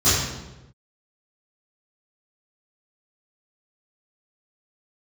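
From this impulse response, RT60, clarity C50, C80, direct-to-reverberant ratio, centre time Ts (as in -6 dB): 1.0 s, -1.0 dB, 2.5 dB, -16.5 dB, 79 ms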